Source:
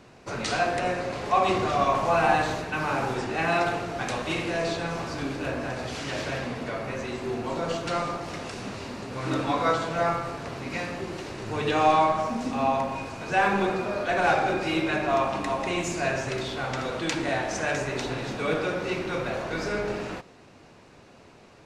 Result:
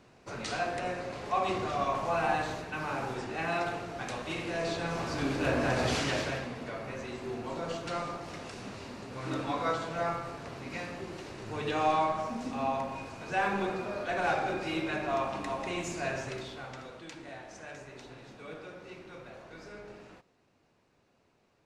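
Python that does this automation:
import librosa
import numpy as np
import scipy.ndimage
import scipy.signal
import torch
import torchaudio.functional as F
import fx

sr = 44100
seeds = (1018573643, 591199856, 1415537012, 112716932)

y = fx.gain(x, sr, db=fx.line((4.35, -7.5), (5.92, 5.0), (6.49, -7.0), (16.22, -7.0), (17.08, -18.0)))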